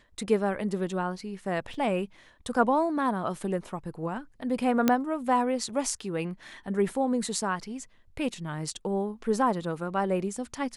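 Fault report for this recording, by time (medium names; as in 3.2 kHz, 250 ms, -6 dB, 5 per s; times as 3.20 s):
1.74 s: dropout 3.1 ms
4.88 s: pop -8 dBFS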